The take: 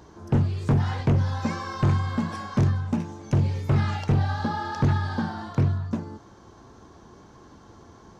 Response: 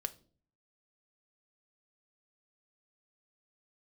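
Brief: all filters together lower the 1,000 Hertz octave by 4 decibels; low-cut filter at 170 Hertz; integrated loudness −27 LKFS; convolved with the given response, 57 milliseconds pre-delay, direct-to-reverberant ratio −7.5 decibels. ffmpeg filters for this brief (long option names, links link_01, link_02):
-filter_complex "[0:a]highpass=170,equalizer=frequency=1000:width_type=o:gain=-5,asplit=2[link_01][link_02];[1:a]atrim=start_sample=2205,adelay=57[link_03];[link_02][link_03]afir=irnorm=-1:irlink=0,volume=8dB[link_04];[link_01][link_04]amix=inputs=2:normalize=0,volume=-4dB"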